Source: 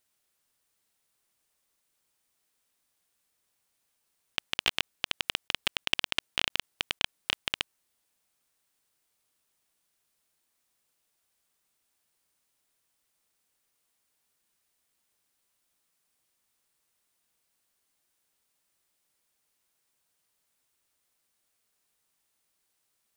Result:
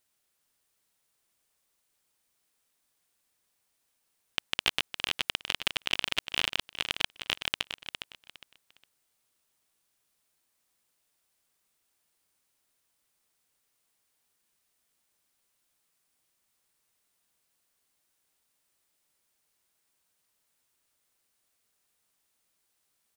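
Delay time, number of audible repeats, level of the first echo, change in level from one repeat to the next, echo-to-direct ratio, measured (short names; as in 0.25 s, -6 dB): 0.409 s, 3, -8.5 dB, -12.0 dB, -8.0 dB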